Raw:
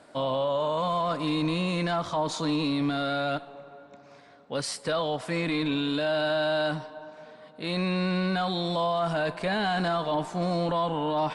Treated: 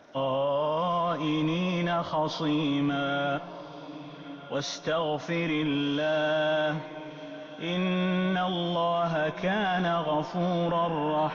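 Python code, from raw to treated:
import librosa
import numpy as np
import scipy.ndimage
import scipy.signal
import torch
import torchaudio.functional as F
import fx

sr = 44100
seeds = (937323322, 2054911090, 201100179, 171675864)

y = fx.freq_compress(x, sr, knee_hz=2500.0, ratio=1.5)
y = fx.echo_diffused(y, sr, ms=1464, feedback_pct=42, wet_db=-16.0)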